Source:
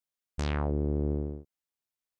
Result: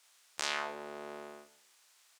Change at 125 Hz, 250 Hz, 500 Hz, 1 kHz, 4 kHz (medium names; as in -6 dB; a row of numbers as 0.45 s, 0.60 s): -36.0 dB, -18.5 dB, -8.5 dB, +1.5 dB, +8.0 dB